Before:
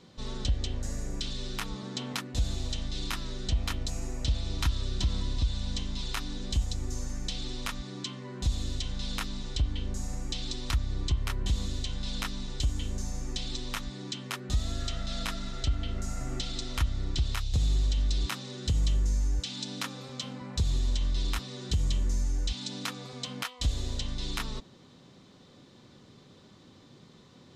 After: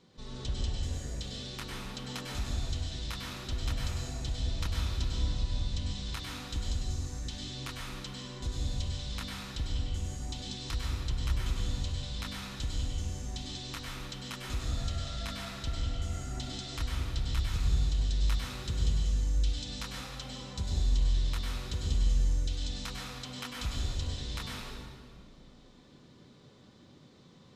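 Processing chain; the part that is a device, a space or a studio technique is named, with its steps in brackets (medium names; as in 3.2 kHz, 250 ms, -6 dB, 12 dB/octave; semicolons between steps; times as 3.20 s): stairwell (reverberation RT60 1.8 s, pre-delay 94 ms, DRR -3 dB); trim -7.5 dB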